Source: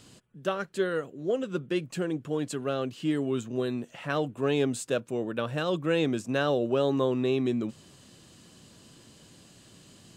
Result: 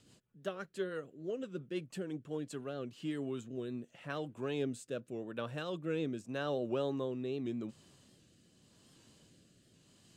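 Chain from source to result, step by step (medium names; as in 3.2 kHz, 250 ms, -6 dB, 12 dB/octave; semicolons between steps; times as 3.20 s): rotary cabinet horn 6 Hz, later 0.85 Hz, at 2.04 s; warped record 78 rpm, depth 100 cents; trim -8.5 dB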